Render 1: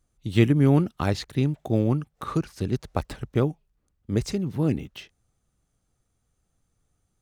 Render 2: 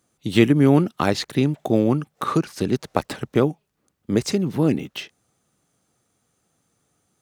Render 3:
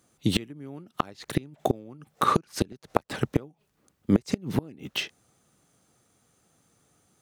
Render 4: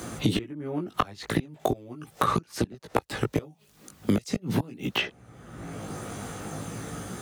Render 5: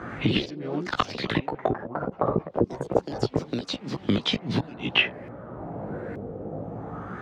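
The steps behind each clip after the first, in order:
high-pass filter 180 Hz 12 dB per octave; in parallel at −1.5 dB: downward compressor, threshold −29 dBFS, peak gain reduction 14 dB; on the sum: level +4 dB
gate with flip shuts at −12 dBFS, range −29 dB; level +3 dB
multi-voice chorus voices 2, 0.4 Hz, delay 18 ms, depth 1.7 ms; multiband upward and downward compressor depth 100%; level +3.5 dB
auto-filter low-pass sine 0.28 Hz 490–4,300 Hz; delay with pitch and tempo change per echo 91 ms, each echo +3 semitones, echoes 3, each echo −6 dB

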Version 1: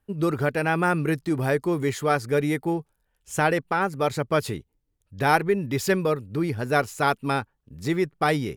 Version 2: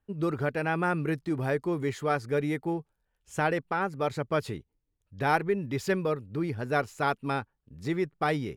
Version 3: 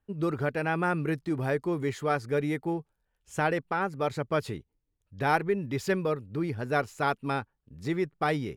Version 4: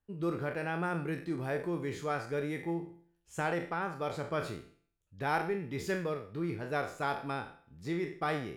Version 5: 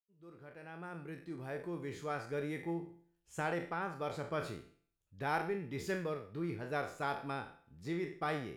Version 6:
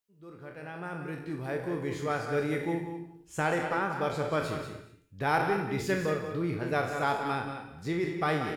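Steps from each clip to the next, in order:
high-shelf EQ 6,600 Hz −10 dB; level −5 dB
no processing that can be heard
peak hold with a decay on every bin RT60 0.44 s; tuned comb filter 170 Hz, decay 0.59 s, harmonics all, mix 60%
fade in at the beginning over 2.49 s; level −3.5 dB
single-tap delay 184 ms −8.5 dB; convolution reverb, pre-delay 3 ms, DRR 8 dB; level +7.5 dB

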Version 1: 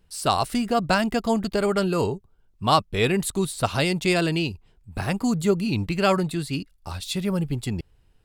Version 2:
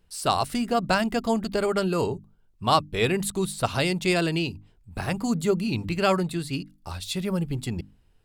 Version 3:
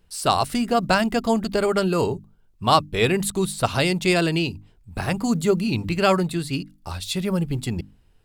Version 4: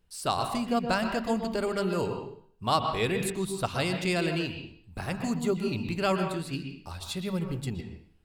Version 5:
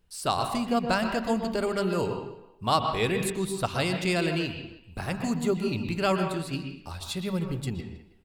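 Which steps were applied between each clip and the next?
mains-hum notches 50/100/150/200/250/300 Hz; level −1.5 dB
floating-point word with a short mantissa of 6 bits; level +3.5 dB
convolution reverb RT60 0.55 s, pre-delay 113 ms, DRR 5 dB; level −8.5 dB
far-end echo of a speakerphone 320 ms, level −20 dB; level +1.5 dB

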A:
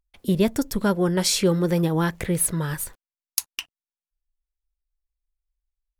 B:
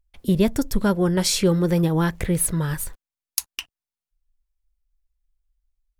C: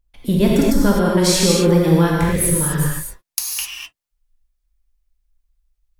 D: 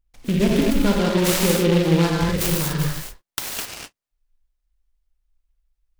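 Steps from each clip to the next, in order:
low-shelf EQ 89 Hz +11 dB
reverb whose tail is shaped and stops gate 280 ms flat, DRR −4 dB; level +1 dB
short delay modulated by noise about 2,500 Hz, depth 0.078 ms; level −3.5 dB

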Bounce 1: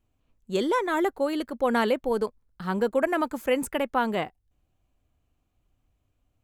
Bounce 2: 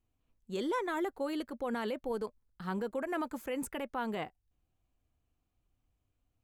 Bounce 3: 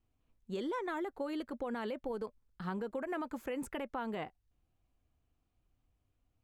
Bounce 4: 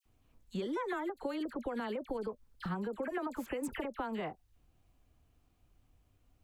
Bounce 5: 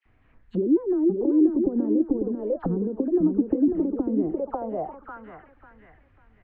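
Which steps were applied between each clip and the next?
notch filter 590 Hz, Q 16; brickwall limiter −19.5 dBFS, peak gain reduction 8 dB; level −7 dB
high-shelf EQ 6,100 Hz −9 dB; downward compressor, threshold −36 dBFS, peak gain reduction 6.5 dB; pitch vibrato 5.9 Hz 26 cents; level +1.5 dB
downward compressor, threshold −43 dBFS, peak gain reduction 9 dB; all-pass dispersion lows, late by 56 ms, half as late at 1,700 Hz; every ending faded ahead of time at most 470 dB per second; level +8.5 dB
on a send: repeating echo 546 ms, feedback 30%, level −5 dB; on the sum: envelope-controlled low-pass 320–2,000 Hz down, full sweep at −34.5 dBFS; level +8 dB

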